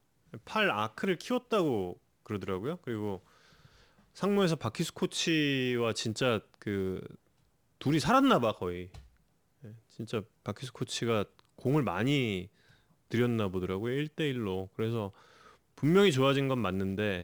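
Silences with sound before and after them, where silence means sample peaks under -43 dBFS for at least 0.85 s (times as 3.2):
3.17–4.17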